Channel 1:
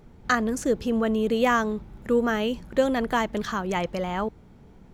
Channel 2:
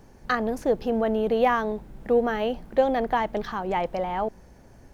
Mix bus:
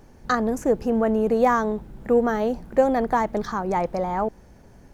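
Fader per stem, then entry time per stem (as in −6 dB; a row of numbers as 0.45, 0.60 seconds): −6.0, 0.0 decibels; 0.00, 0.00 seconds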